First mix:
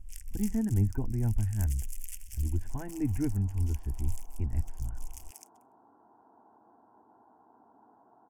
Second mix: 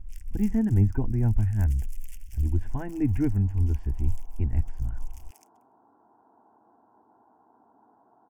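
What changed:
speech +5.5 dB
first sound: add parametric band 9,400 Hz −10 dB 1.8 octaves

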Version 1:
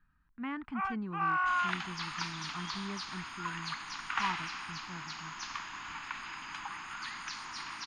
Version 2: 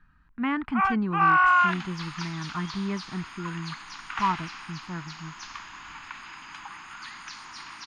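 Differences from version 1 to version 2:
speech +11.0 dB
first sound +11.0 dB
second sound: add parametric band 11,000 Hz +5.5 dB 0.23 octaves

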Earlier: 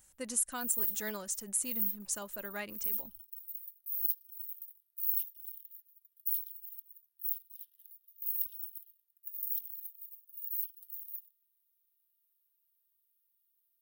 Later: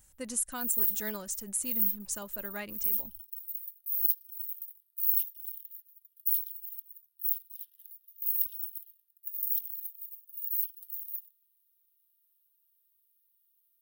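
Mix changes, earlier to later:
background +5.0 dB
master: add low-shelf EQ 150 Hz +9 dB

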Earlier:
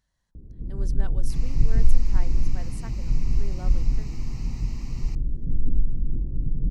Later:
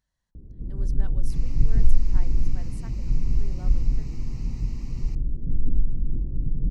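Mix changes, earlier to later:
speech −5.0 dB
second sound −4.5 dB

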